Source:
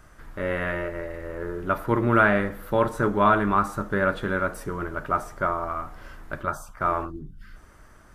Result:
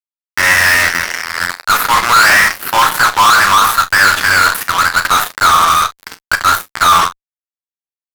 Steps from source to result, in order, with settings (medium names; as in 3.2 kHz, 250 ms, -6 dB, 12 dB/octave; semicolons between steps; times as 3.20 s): octave divider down 2 oct, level +2 dB; Bessel high-pass 1.6 kHz, order 6; high-order bell 5.6 kHz -14.5 dB; fuzz box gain 48 dB, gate -45 dBFS; on a send: early reflections 11 ms -11 dB, 34 ms -15.5 dB, 45 ms -16 dB; on the sum: trim +6.5 dB